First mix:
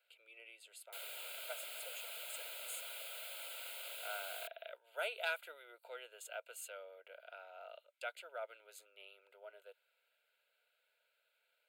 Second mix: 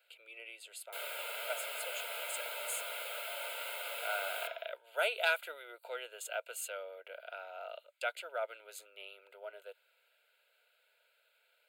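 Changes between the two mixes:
speech +7.5 dB; reverb: on, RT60 0.60 s

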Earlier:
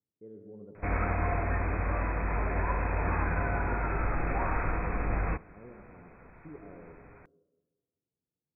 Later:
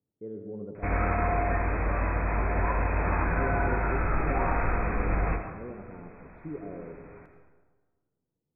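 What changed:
speech +9.0 dB; background: send on

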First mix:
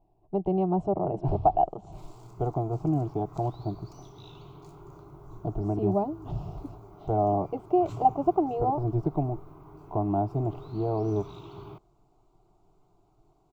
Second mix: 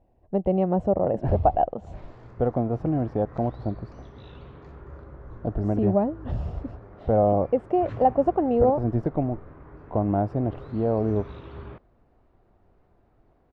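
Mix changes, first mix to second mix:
background: add air absorption 210 m; master: remove fixed phaser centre 350 Hz, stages 8

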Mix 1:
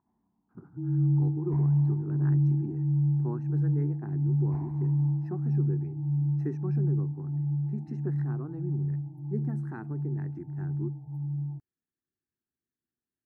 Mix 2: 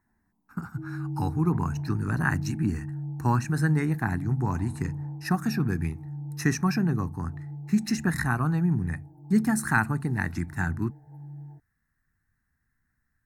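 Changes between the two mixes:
speech: remove band-pass 370 Hz, Q 4.4; first sound: add graphic EQ 125/250/500 Hz -9/-8/+9 dB

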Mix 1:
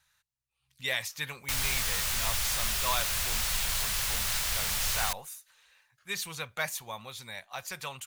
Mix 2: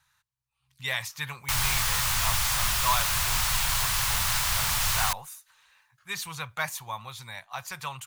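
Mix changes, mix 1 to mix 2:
background +3.5 dB; master: add ten-band EQ 125 Hz +8 dB, 250 Hz -5 dB, 500 Hz -5 dB, 1000 Hz +8 dB

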